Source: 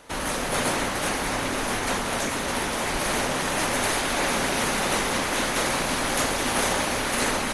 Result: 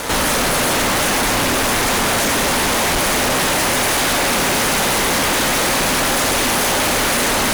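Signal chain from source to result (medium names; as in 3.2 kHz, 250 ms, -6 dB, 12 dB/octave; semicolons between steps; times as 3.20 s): fuzz box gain 50 dB, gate -51 dBFS; trim -3 dB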